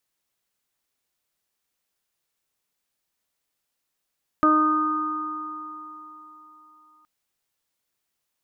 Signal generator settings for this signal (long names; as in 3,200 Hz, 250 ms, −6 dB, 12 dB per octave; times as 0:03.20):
harmonic partials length 2.62 s, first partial 308 Hz, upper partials −6/−15/3/−14.5 dB, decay 3.06 s, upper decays 0.80/4.64/3.89/2.23 s, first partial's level −18.5 dB